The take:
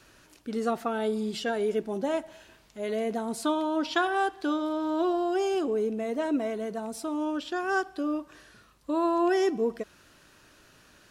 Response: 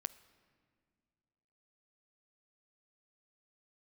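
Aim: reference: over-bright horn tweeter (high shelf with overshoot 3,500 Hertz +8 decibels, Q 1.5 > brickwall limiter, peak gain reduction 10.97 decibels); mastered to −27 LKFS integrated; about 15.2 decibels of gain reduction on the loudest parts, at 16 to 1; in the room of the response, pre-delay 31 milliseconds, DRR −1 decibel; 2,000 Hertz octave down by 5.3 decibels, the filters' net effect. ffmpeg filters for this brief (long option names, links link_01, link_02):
-filter_complex "[0:a]equalizer=frequency=2000:width_type=o:gain=-6,acompressor=threshold=-37dB:ratio=16,asplit=2[link_01][link_02];[1:a]atrim=start_sample=2205,adelay=31[link_03];[link_02][link_03]afir=irnorm=-1:irlink=0,volume=3dB[link_04];[link_01][link_04]amix=inputs=2:normalize=0,highshelf=frequency=3500:width_type=q:width=1.5:gain=8,volume=13.5dB,alimiter=limit=-18dB:level=0:latency=1"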